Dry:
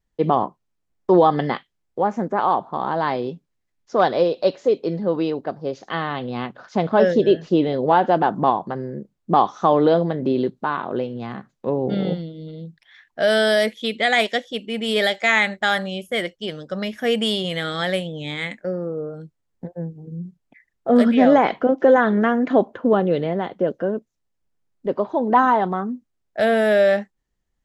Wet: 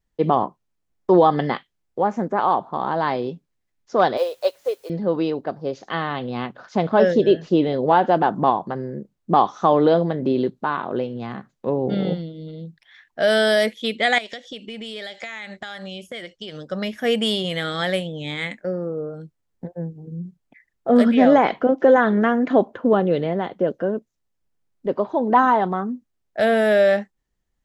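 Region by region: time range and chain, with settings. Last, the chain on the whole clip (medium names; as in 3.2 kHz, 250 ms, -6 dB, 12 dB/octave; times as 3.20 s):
4.17–4.90 s: high-pass 490 Hz 24 dB/octave + word length cut 8-bit, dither triangular + upward expansion, over -39 dBFS
14.18–16.58 s: low-pass 5.9 kHz + treble shelf 3.8 kHz +10.5 dB + compression 16:1, threshold -29 dBFS
whole clip: none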